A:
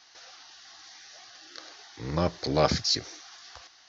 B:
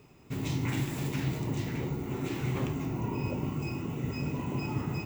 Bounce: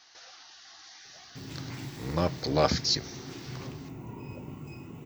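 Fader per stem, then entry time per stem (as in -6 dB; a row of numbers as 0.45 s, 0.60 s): -1.0 dB, -9.0 dB; 0.00 s, 1.05 s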